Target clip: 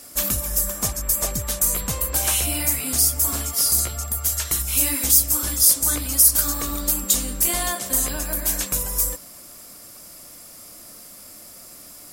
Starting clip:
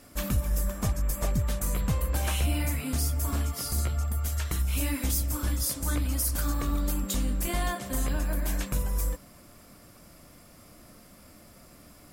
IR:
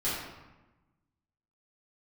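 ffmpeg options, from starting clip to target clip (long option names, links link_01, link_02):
-af "bass=frequency=250:gain=-8,treble=frequency=4000:gain=12,volume=4.5dB"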